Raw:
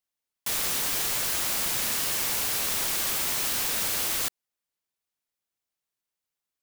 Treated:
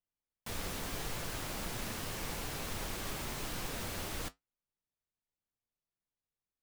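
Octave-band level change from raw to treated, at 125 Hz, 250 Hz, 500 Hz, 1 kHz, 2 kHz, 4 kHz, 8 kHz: +2.0 dB, -1.0 dB, -4.5 dB, -7.0 dB, -10.0 dB, -13.0 dB, -16.5 dB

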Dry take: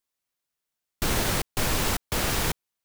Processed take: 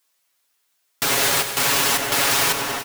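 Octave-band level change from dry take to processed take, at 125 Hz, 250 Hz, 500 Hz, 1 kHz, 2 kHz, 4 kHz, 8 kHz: -4.5 dB, 0.0 dB, +5.5 dB, +8.5 dB, +9.5 dB, +10.0 dB, +10.0 dB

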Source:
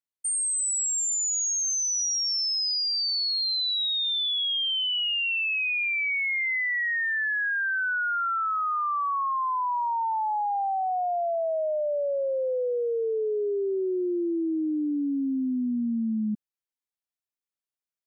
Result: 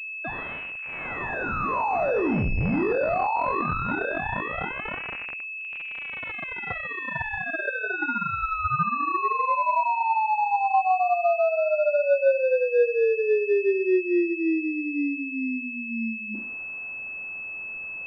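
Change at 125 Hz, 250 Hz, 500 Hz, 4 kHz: no reading, +1.0 dB, +5.5 dB, under -20 dB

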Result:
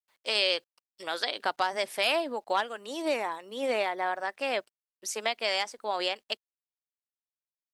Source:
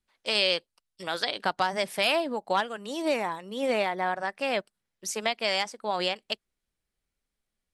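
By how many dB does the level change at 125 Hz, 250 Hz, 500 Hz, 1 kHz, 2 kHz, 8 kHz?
under -10 dB, -5.0 dB, -2.0 dB, -1.5 dB, -1.5 dB, -1.5 dB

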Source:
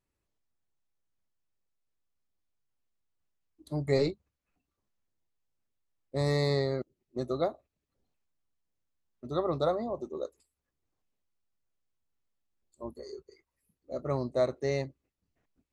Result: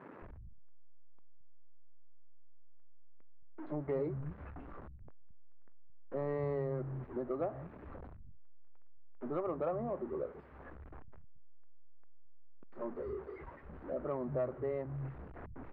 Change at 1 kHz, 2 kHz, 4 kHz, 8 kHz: -5.5 dB, -10.5 dB, under -30 dB, no reading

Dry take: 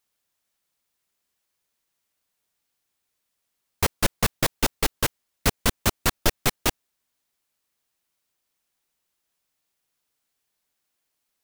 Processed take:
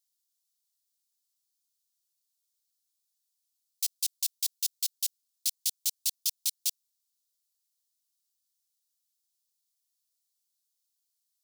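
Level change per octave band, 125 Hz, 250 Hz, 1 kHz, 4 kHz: under -40 dB, under -40 dB, under -40 dB, -5.0 dB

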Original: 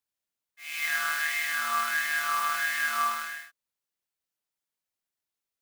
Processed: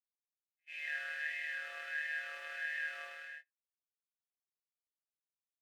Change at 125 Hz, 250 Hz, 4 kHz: no reading, under -25 dB, -15.5 dB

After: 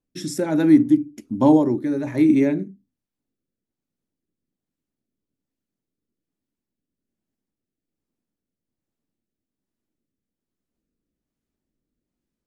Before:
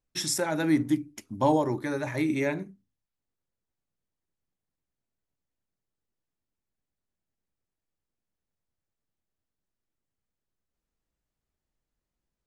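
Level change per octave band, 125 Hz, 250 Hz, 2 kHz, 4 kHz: +5.0 dB, +11.0 dB, -1.5 dB, no reading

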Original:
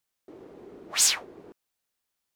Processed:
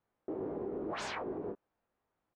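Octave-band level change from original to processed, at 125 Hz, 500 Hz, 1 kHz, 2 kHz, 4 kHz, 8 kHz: no reading, +8.0 dB, +1.0 dB, -9.5 dB, -20.5 dB, -30.5 dB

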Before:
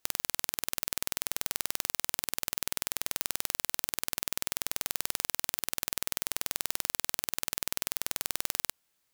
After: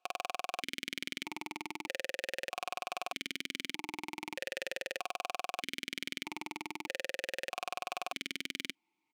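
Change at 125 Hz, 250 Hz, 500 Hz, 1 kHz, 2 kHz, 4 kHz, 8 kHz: -8.5 dB, +2.5 dB, +4.0 dB, +2.5 dB, +1.0 dB, -3.5 dB, -15.5 dB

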